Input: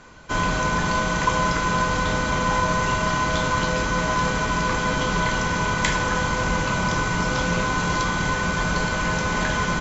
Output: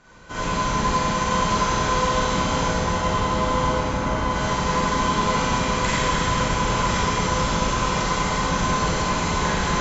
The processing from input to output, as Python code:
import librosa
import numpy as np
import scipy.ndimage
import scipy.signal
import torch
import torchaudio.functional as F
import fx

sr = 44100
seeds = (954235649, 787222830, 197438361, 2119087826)

y = fx.high_shelf(x, sr, hz=2600.0, db=-11.5, at=(2.68, 4.31))
y = y + 10.0 ** (-5.0 / 20.0) * np.pad(y, (int(1008 * sr / 1000.0), 0))[:len(y)]
y = fx.rev_schroeder(y, sr, rt60_s=2.0, comb_ms=33, drr_db=-9.0)
y = F.gain(torch.from_numpy(y), -8.5).numpy()